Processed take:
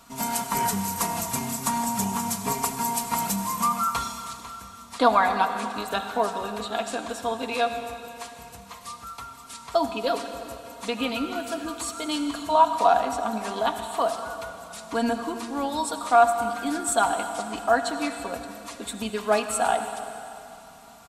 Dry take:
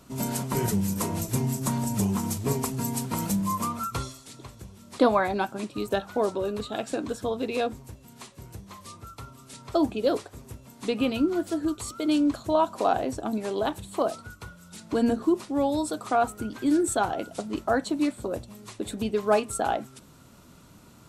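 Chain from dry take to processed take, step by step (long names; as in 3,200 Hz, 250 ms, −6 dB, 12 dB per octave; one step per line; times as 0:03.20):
low shelf with overshoot 600 Hz −8.5 dB, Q 1.5
comb filter 4.3 ms, depth 55%
convolution reverb RT60 2.9 s, pre-delay 63 ms, DRR 7.5 dB
level +3 dB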